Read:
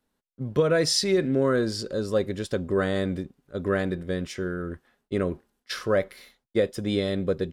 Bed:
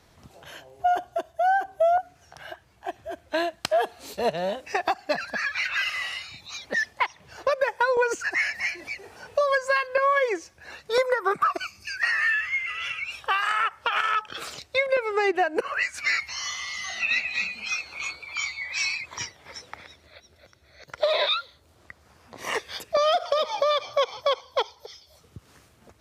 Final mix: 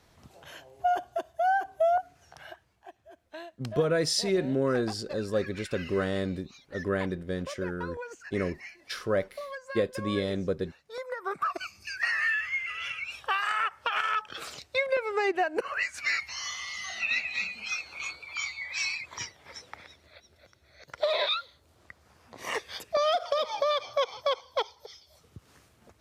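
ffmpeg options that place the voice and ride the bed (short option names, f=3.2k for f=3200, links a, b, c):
-filter_complex "[0:a]adelay=3200,volume=-4dB[a];[1:a]volume=9.5dB,afade=t=out:st=2.31:d=0.61:silence=0.211349,afade=t=in:st=10.97:d=0.76:silence=0.223872[b];[a][b]amix=inputs=2:normalize=0"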